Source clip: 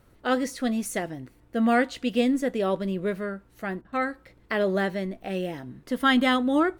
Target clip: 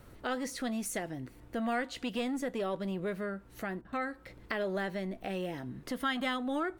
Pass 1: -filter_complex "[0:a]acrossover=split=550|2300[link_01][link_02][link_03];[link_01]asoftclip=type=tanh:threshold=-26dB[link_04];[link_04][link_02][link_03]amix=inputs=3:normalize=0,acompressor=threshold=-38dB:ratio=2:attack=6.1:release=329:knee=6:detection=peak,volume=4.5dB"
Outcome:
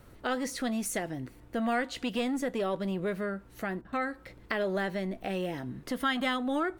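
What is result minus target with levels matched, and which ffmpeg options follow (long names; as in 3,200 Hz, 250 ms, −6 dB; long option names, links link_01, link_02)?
downward compressor: peak gain reduction −3 dB
-filter_complex "[0:a]acrossover=split=550|2300[link_01][link_02][link_03];[link_01]asoftclip=type=tanh:threshold=-26dB[link_04];[link_04][link_02][link_03]amix=inputs=3:normalize=0,acompressor=threshold=-44.5dB:ratio=2:attack=6.1:release=329:knee=6:detection=peak,volume=4.5dB"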